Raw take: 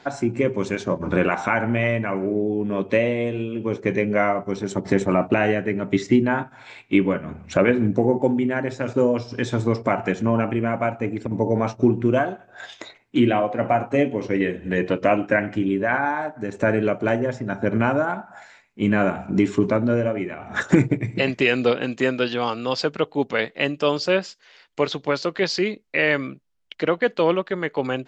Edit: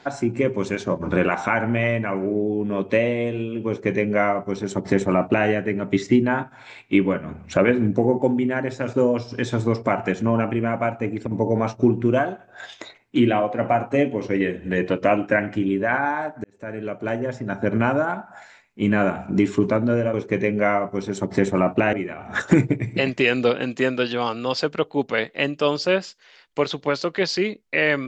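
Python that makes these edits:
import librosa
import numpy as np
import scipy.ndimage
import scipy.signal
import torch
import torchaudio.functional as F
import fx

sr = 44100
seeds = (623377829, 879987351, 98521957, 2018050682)

y = fx.edit(x, sr, fx.duplicate(start_s=3.68, length_s=1.79, to_s=20.14),
    fx.fade_in_span(start_s=16.44, length_s=1.1), tone=tone)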